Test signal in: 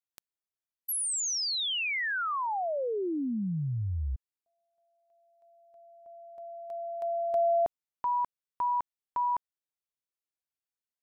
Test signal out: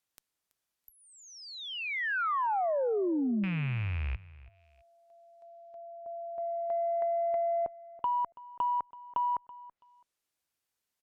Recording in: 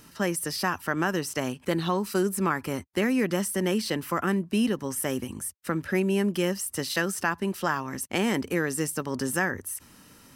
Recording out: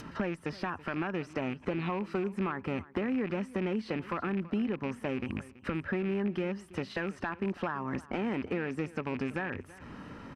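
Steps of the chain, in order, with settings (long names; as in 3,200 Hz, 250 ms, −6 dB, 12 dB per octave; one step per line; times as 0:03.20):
loose part that buzzes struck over −33 dBFS, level −21 dBFS
downward compressor 16 to 1, threshold −36 dBFS
harmonic generator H 4 −34 dB, 5 −8 dB, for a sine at −20.5 dBFS
on a send: repeating echo 330 ms, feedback 20%, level −19 dB
on the sum: treble cut that deepens with the level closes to 1,800 Hz, closed at −44.5 dBFS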